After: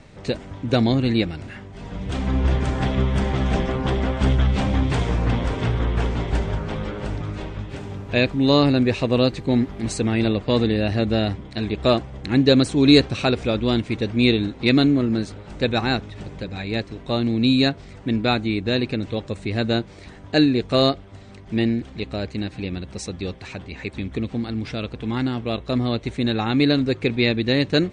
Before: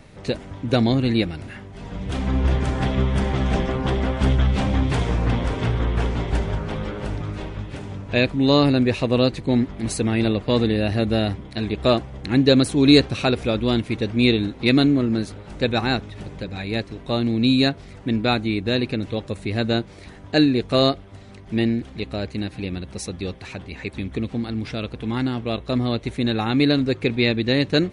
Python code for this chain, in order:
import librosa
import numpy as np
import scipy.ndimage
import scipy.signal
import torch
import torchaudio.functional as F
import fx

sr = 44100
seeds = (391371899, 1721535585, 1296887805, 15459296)

y = scipy.signal.sosfilt(scipy.signal.butter(16, 9100.0, 'lowpass', fs=sr, output='sos'), x)
y = fx.dmg_buzz(y, sr, base_hz=400.0, harmonics=34, level_db=-47.0, tilt_db=-9, odd_only=False, at=(7.69, 10.14), fade=0.02)